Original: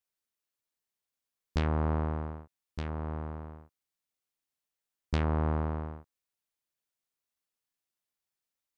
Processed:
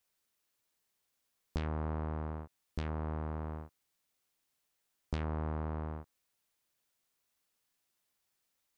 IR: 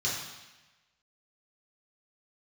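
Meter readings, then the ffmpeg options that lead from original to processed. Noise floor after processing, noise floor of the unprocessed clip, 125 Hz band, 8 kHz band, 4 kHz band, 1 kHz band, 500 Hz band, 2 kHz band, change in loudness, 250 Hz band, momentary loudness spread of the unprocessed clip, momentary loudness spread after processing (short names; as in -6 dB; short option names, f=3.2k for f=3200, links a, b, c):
-82 dBFS, under -85 dBFS, -5.5 dB, n/a, -7.0 dB, -5.5 dB, -5.5 dB, -6.0 dB, -6.5 dB, -5.5 dB, 16 LU, 10 LU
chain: -af "acompressor=threshold=-43dB:ratio=6,volume=8dB"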